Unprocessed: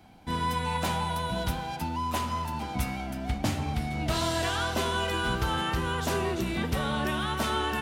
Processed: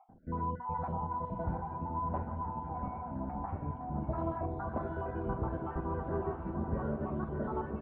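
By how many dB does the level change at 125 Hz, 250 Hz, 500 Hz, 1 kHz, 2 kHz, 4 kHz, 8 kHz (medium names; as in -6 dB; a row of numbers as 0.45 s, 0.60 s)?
-5.5 dB, -5.5 dB, -5.5 dB, -6.5 dB, -19.0 dB, under -40 dB, under -40 dB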